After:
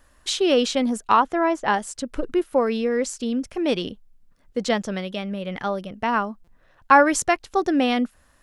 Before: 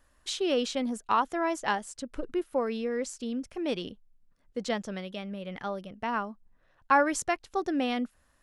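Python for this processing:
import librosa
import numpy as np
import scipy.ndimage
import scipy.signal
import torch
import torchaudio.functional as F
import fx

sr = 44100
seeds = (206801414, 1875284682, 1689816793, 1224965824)

y = fx.lowpass(x, sr, hz=fx.line((1.16, 2900.0), (1.72, 1700.0)), slope=6, at=(1.16, 1.72), fade=0.02)
y = fx.buffer_glitch(y, sr, at_s=(6.44,), block=256, repeats=5)
y = F.gain(torch.from_numpy(y), 8.5).numpy()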